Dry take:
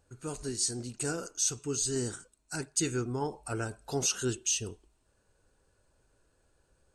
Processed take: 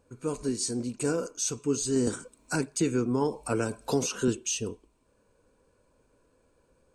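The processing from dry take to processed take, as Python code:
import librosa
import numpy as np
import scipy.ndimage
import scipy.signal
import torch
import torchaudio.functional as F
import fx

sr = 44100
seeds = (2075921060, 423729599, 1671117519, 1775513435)

y = fx.small_body(x, sr, hz=(250.0, 480.0, 1000.0, 2300.0), ring_ms=20, db=11)
y = fx.band_squash(y, sr, depth_pct=70, at=(2.07, 4.28))
y = F.gain(torch.from_numpy(y), -1.5).numpy()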